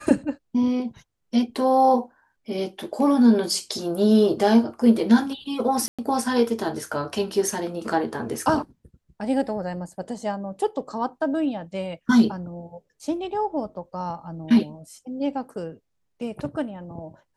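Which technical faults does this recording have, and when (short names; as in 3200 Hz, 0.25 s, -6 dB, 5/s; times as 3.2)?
5.88–5.99 gap 0.106 s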